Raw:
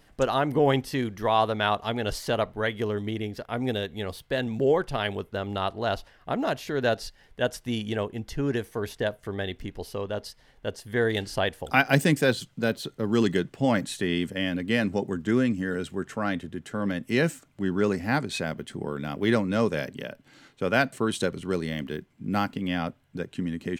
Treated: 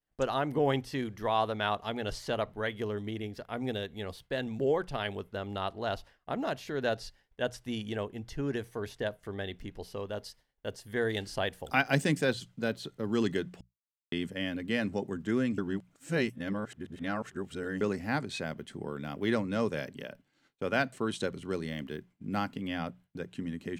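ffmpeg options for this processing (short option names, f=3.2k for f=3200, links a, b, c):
-filter_complex "[0:a]asettb=1/sr,asplit=3[a][b][c];[a]atrim=end=9.974[d];[b]atrim=start=9.97:end=12.25,asetpts=PTS-STARTPTS,afade=t=in:d=0.004:c=qsin,afade=t=out:st=2.276:d=0.004:c=qsin,highshelf=f=11k:g=11.5[e];[c]atrim=start=12.246[f];[d][e]acrossfade=d=0.004:c1=hsin:c2=qsin[g];[g][f]acrossfade=d=0.004:c1=qsin:c2=hsin,asplit=5[h][i][j][k][l];[h]atrim=end=13.61,asetpts=PTS-STARTPTS,afade=t=out:st=13.606:d=0.004:c=hsin[m];[i]atrim=start=13.61:end=14.12,asetpts=PTS-STARTPTS,volume=0[n];[j]atrim=start=14.12:end=15.582,asetpts=PTS-STARTPTS,afade=t=in:d=0.004:c=hsin[o];[k]atrim=start=15.578:end=17.812,asetpts=PTS-STARTPTS,areverse[p];[l]atrim=start=17.808[q];[m][n][o]concat=n=3:v=0:a=1[r];[r][p]acrossfade=d=0.004:c1=hsin:c2=hsin[s];[s][q]acrossfade=d=0.004:c1=hsin:c2=hsin,bandreject=f=60:t=h:w=6,bandreject=f=120:t=h:w=6,bandreject=f=180:t=h:w=6,agate=range=-33dB:threshold=-44dB:ratio=3:detection=peak,acrossover=split=8800[t][u];[u]acompressor=threshold=-54dB:ratio=4:attack=1:release=60[v];[t][v]amix=inputs=2:normalize=0,volume=-6dB"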